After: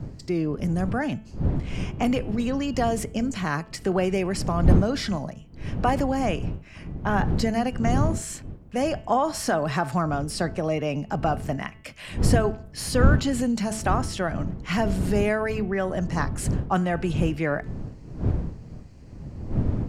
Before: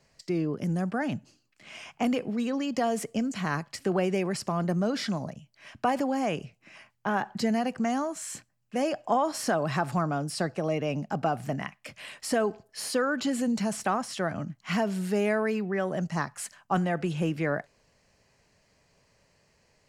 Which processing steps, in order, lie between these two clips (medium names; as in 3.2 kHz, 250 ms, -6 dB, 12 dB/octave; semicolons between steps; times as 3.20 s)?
wind noise 150 Hz -31 dBFS; de-hum 219 Hz, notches 15; trim +3 dB